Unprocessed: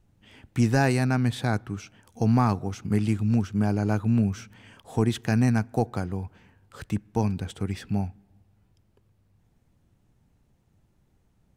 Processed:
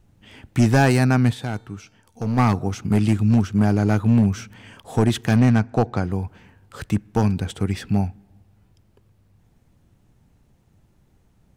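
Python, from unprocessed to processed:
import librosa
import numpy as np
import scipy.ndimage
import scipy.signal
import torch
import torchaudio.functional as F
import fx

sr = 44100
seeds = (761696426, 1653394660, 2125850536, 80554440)

y = fx.lowpass(x, sr, hz=5400.0, slope=12, at=(5.36, 6.04))
y = np.clip(y, -10.0 ** (-16.5 / 20.0), 10.0 ** (-16.5 / 20.0))
y = fx.comb_fb(y, sr, f0_hz=450.0, decay_s=0.73, harmonics='all', damping=0.0, mix_pct=60, at=(1.32, 2.37), fade=0.02)
y = y * 10.0 ** (6.5 / 20.0)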